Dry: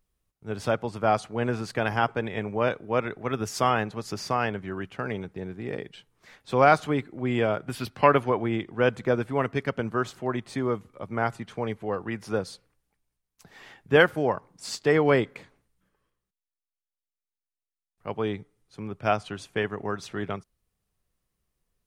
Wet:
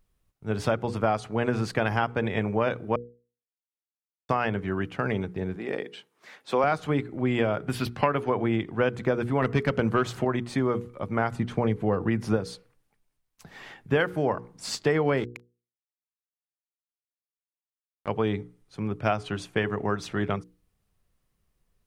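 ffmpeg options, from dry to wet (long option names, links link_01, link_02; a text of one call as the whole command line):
ffmpeg -i in.wav -filter_complex "[0:a]asettb=1/sr,asplit=3[link_01][link_02][link_03];[link_01]atrim=end=5.564[link_04];[link_02]atrim=start=5.56:end=6.64,asetpts=PTS-STARTPTS,afade=type=in:duration=0.004:curve=qsin,afade=type=out:start_time=1.076:duration=0.004:curve=qsin,highpass=290[link_05];[link_03]atrim=start=6.636[link_06];[link_04][link_05]acrossfade=duration=0.004:curve1=hsin:curve2=qsin[link_07];[link_07][link_06]acrossfade=duration=0.004:curve1=qsin:curve2=hsin,asettb=1/sr,asplit=3[link_08][link_09][link_10];[link_08]atrim=end=9.424[link_11];[link_09]atrim=start=9.42:end=10.25,asetpts=PTS-STARTPTS,afade=type=in:duration=0.004:curve=qsin,afade=type=out:start_time=0.826:duration=0.004:curve=qsin,aeval=exprs='0.282*sin(PI/2*1.41*val(0)/0.282)':channel_layout=same[link_12];[link_10]atrim=start=10.246[link_13];[link_11][link_12]acrossfade=duration=0.004:curve1=hsin:curve2=qsin[link_14];[link_14][link_13]acrossfade=duration=0.004:curve1=qsin:curve2=hsin,asettb=1/sr,asplit=3[link_15][link_16][link_17];[link_15]atrim=end=11.314[link_18];[link_16]atrim=start=11.31:end=12.37,asetpts=PTS-STARTPTS,afade=type=in:duration=0.004:curve=qsin,afade=type=out:start_time=1.056:duration=0.004:curve=qsin,lowshelf=frequency=440:gain=7.5[link_19];[link_17]atrim=start=12.366[link_20];[link_18][link_19]acrossfade=duration=0.004:curve1=hsin:curve2=qsin[link_21];[link_21][link_20]acrossfade=duration=0.004:curve1=qsin:curve2=hsin,asettb=1/sr,asplit=3[link_22][link_23][link_24];[link_22]atrim=end=15.174[link_25];[link_23]atrim=start=15.17:end=18.08,asetpts=PTS-STARTPTS,afade=type=in:duration=0.004:curve=qsin,afade=type=out:start_time=2.906:duration=0.004:curve=qsin,aeval=exprs='sgn(val(0))*max(abs(val(0))-0.0119,0)':channel_layout=same[link_26];[link_24]atrim=start=18.076[link_27];[link_25][link_26]acrossfade=duration=0.004:curve1=hsin:curve2=qsin[link_28];[link_28][link_27]acrossfade=duration=0.004:curve1=qsin:curve2=hsin,asplit=3[link_29][link_30][link_31];[link_29]atrim=end=2.96,asetpts=PTS-STARTPTS,afade=type=out:start_time=2.956:duration=0.004:curve=hsin[link_32];[link_30]atrim=start=2.96:end=4.29,asetpts=PTS-STARTPTS,volume=0[link_33];[link_31]atrim=start=4.29,asetpts=PTS-STARTPTS,afade=type=in:duration=0.004:curve=hsin[link_34];[link_32][link_33][link_34]concat=n=3:v=0:a=1,bass=frequency=250:gain=3,treble=frequency=4000:gain=-3,bandreject=frequency=60:width_type=h:width=6,bandreject=frequency=120:width_type=h:width=6,bandreject=frequency=180:width_type=h:width=6,bandreject=frequency=240:width_type=h:width=6,bandreject=frequency=300:width_type=h:width=6,bandreject=frequency=360:width_type=h:width=6,bandreject=frequency=420:width_type=h:width=6,bandreject=frequency=480:width_type=h:width=6,acompressor=threshold=-24dB:ratio=6,volume=4dB" out.wav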